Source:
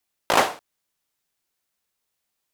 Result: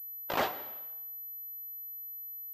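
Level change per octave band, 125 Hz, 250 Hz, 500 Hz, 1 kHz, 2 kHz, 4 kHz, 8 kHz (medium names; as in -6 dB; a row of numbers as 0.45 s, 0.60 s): -8.0 dB, -9.5 dB, -10.0 dB, -11.5 dB, -11.5 dB, -12.0 dB, under -15 dB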